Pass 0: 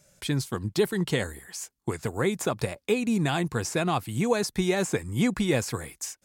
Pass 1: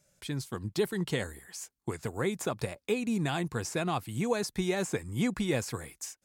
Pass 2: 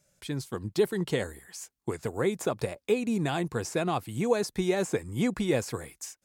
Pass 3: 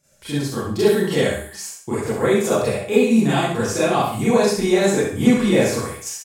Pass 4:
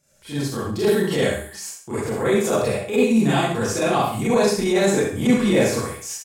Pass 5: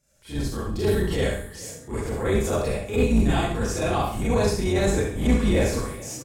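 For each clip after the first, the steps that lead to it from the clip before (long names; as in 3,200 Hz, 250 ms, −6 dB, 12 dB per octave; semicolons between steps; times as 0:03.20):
automatic gain control gain up to 3.5 dB; level −8.5 dB
dynamic equaliser 470 Hz, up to +5 dB, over −43 dBFS, Q 0.87
on a send: repeating echo 66 ms, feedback 28%, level −6 dB; on the sum: four-comb reverb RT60 0.39 s, combs from 28 ms, DRR −10 dB
transient designer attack −8 dB, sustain −1 dB
sub-octave generator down 2 octaves, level +2 dB; gain into a clipping stage and back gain 7 dB; echo with shifted repeats 427 ms, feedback 59%, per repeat +33 Hz, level −20 dB; level −5 dB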